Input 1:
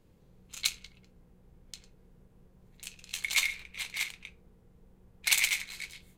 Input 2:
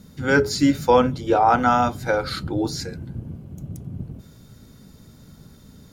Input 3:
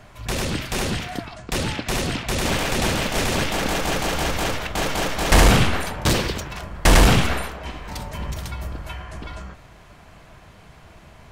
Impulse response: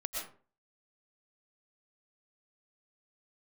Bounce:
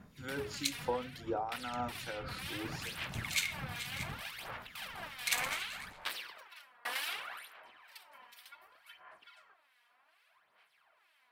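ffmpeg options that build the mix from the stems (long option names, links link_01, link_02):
-filter_complex "[0:a]volume=-5dB[link_01];[1:a]acompressor=threshold=-23dB:ratio=4,tremolo=f=4.4:d=0.34,volume=-9dB[link_02];[2:a]highpass=1200,equalizer=frequency=6700:width=1.8:gain=-15,aphaser=in_gain=1:out_gain=1:delay=4.2:decay=0.62:speed=0.66:type=sinusoidal,volume=-14dB[link_03];[link_01][link_02][link_03]amix=inputs=3:normalize=0,acrossover=split=1700[link_04][link_05];[link_04]aeval=exprs='val(0)*(1-0.7/2+0.7/2*cos(2*PI*2.2*n/s))':channel_layout=same[link_06];[link_05]aeval=exprs='val(0)*(1-0.7/2-0.7/2*cos(2*PI*2.2*n/s))':channel_layout=same[link_07];[link_06][link_07]amix=inputs=2:normalize=0"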